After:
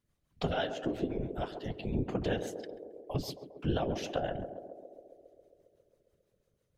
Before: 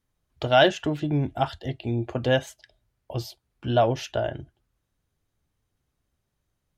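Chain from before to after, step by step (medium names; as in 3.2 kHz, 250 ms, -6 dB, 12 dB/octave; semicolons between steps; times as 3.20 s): compression 6:1, threshold -27 dBFS, peak gain reduction 13.5 dB; 0.61–1.94 s: robot voice 107 Hz; rotary cabinet horn 6 Hz; whisper effect; band-passed feedback delay 135 ms, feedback 78%, band-pass 440 Hz, level -7.5 dB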